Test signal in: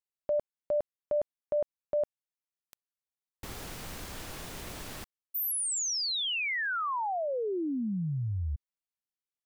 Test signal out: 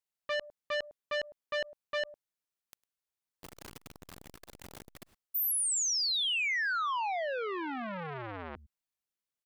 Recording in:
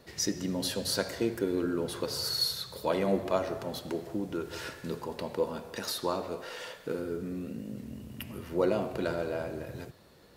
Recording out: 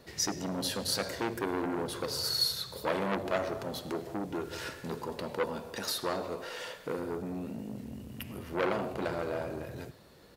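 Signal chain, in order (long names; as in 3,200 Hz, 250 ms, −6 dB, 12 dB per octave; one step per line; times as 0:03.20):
on a send: single-tap delay 104 ms −23.5 dB
on the sum: saturating transformer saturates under 1,700 Hz
level +1 dB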